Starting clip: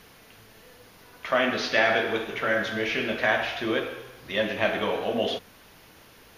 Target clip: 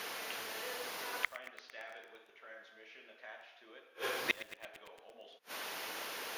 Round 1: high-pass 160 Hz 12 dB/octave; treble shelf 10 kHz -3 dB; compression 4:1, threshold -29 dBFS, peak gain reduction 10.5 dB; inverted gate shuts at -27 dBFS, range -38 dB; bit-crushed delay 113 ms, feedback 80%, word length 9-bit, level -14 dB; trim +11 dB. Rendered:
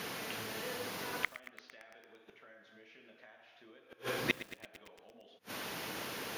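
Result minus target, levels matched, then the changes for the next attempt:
125 Hz band +14.0 dB; compression: peak gain reduction +10.5 dB
change: high-pass 480 Hz 12 dB/octave; remove: compression 4:1, threshold -29 dBFS, peak gain reduction 10.5 dB

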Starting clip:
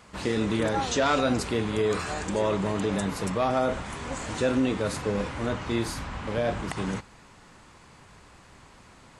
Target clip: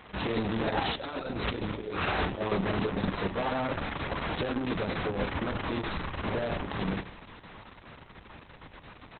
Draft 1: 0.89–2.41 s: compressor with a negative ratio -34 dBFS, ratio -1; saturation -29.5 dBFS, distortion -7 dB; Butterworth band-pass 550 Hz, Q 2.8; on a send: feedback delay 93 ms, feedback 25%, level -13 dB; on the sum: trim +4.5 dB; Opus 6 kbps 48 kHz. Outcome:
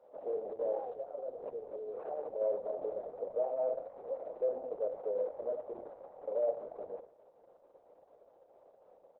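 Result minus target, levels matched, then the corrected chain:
500 Hz band +6.0 dB
0.89–2.41 s: compressor with a negative ratio -34 dBFS, ratio -1; saturation -29.5 dBFS, distortion -7 dB; on a send: feedback delay 93 ms, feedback 25%, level -13 dB; on the sum: trim +4.5 dB; Opus 6 kbps 48 kHz

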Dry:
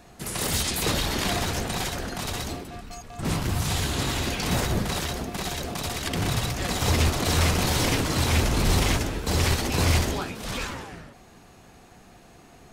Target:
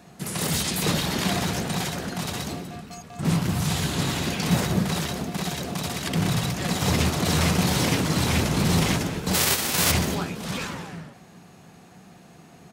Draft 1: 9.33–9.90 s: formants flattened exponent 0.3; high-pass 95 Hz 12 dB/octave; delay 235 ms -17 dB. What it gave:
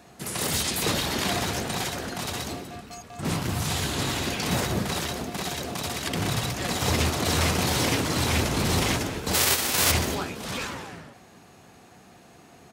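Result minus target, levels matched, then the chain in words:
125 Hz band -3.0 dB
9.33–9.90 s: formants flattened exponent 0.3; high-pass 95 Hz 12 dB/octave; peaking EQ 170 Hz +9.5 dB 0.56 oct; delay 235 ms -17 dB

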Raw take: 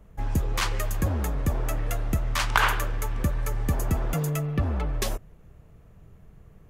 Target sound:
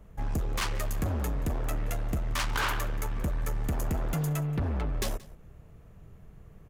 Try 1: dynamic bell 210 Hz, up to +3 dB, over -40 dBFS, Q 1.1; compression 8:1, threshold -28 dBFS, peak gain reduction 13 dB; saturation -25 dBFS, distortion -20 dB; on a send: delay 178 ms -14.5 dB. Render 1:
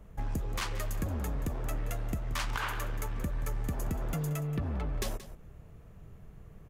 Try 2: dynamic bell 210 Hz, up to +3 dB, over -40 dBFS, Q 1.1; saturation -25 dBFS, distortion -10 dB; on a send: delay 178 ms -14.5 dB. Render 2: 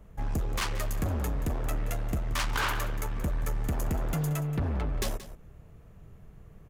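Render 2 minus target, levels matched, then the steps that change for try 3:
echo-to-direct +7 dB
change: delay 178 ms -21.5 dB

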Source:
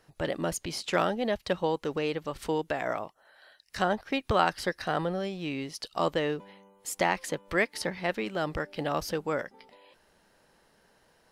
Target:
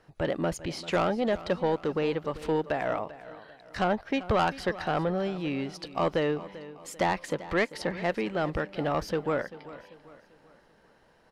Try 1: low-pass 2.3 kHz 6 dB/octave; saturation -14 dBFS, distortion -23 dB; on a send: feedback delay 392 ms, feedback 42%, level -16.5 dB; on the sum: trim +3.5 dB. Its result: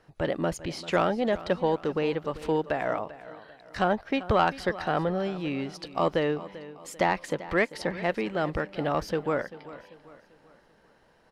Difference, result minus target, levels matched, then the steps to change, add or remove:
saturation: distortion -9 dB
change: saturation -21 dBFS, distortion -14 dB

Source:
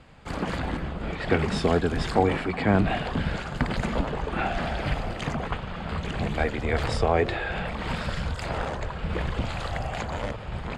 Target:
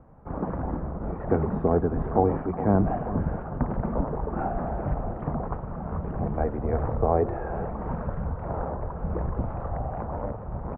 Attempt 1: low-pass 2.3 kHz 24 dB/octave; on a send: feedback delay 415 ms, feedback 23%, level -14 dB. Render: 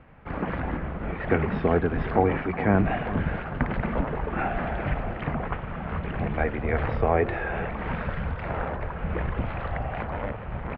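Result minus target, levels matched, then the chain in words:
2 kHz band +13.0 dB
low-pass 1.1 kHz 24 dB/octave; on a send: feedback delay 415 ms, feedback 23%, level -14 dB

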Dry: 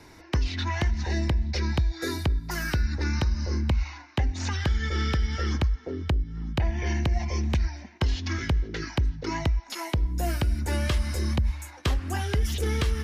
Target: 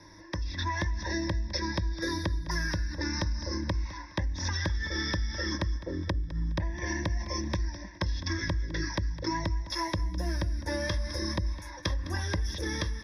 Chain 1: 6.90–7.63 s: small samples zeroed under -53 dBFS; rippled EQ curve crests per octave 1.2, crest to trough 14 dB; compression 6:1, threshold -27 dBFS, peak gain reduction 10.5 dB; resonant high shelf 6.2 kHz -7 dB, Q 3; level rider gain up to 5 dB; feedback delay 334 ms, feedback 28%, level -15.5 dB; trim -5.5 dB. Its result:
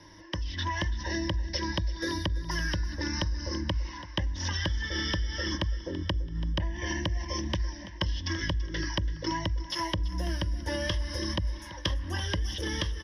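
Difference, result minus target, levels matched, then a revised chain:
echo 126 ms late; 4 kHz band +3.0 dB
6.90–7.63 s: small samples zeroed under -53 dBFS; rippled EQ curve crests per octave 1.2, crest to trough 14 dB; compression 6:1, threshold -27 dBFS, peak gain reduction 10.5 dB; Butterworth band-stop 3 kHz, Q 4; resonant high shelf 6.2 kHz -7 dB, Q 3; level rider gain up to 5 dB; feedback delay 208 ms, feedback 28%, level -15.5 dB; trim -5.5 dB

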